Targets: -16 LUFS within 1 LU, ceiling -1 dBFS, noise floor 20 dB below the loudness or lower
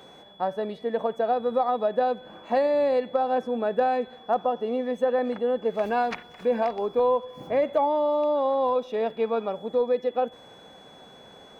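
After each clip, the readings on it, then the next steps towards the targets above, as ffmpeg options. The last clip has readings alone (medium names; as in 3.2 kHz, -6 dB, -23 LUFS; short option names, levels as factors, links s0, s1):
steady tone 3.4 kHz; tone level -52 dBFS; loudness -26.0 LUFS; peak level -13.5 dBFS; loudness target -16.0 LUFS
-> -af "bandreject=f=3400:w=30"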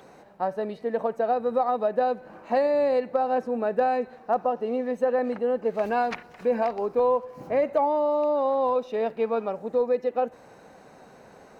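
steady tone not found; loudness -26.0 LUFS; peak level -13.5 dBFS; loudness target -16.0 LUFS
-> -af "volume=3.16"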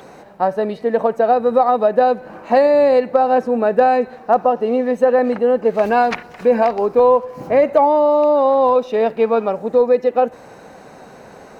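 loudness -16.0 LUFS; peak level -3.5 dBFS; noise floor -41 dBFS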